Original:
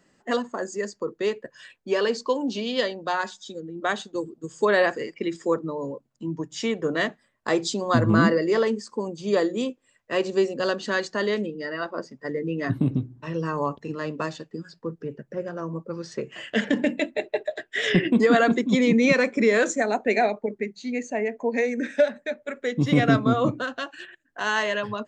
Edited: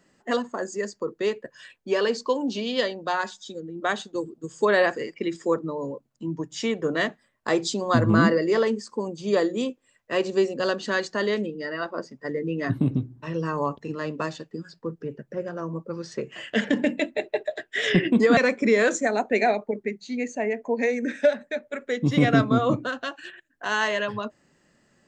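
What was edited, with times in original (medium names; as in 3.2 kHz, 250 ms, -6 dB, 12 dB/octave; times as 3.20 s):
18.37–19.12 s: delete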